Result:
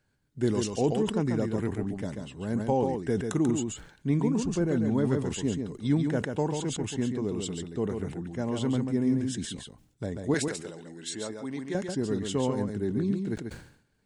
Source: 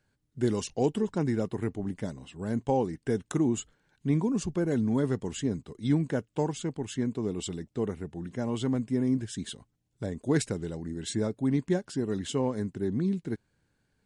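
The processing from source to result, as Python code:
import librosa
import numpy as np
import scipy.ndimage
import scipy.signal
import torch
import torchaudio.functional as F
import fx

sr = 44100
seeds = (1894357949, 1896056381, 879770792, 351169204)

y = fx.high_shelf(x, sr, hz=8600.0, db=-9.0, at=(4.4, 5.05))
y = fx.highpass(y, sr, hz=760.0, slope=6, at=(10.34, 11.75))
y = y + 10.0 ** (-5.5 / 20.0) * np.pad(y, (int(139 * sr / 1000.0), 0))[:len(y)]
y = fx.sustainer(y, sr, db_per_s=95.0)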